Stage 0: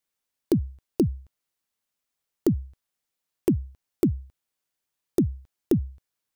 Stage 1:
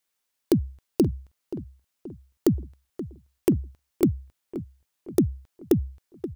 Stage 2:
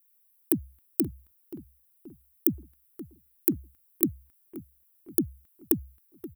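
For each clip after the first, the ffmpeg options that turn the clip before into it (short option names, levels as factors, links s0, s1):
-filter_complex "[0:a]lowshelf=f=470:g=-5.5,asplit=2[s0][s1];[s1]adelay=528,lowpass=f=1800:p=1,volume=0.224,asplit=2[s2][s3];[s3]adelay=528,lowpass=f=1800:p=1,volume=0.49,asplit=2[s4][s5];[s5]adelay=528,lowpass=f=1800:p=1,volume=0.49,asplit=2[s6][s7];[s7]adelay=528,lowpass=f=1800:p=1,volume=0.49,asplit=2[s8][s9];[s9]adelay=528,lowpass=f=1800:p=1,volume=0.49[s10];[s0][s2][s4][s6][s8][s10]amix=inputs=6:normalize=0,volume=1.78"
-af "firequalizer=gain_entry='entry(110,0);entry(300,8);entry(480,-4);entry(1300,8);entry(3900,5)':delay=0.05:min_phase=1,aexciter=amount=13.6:drive=3.3:freq=9200,volume=0.224"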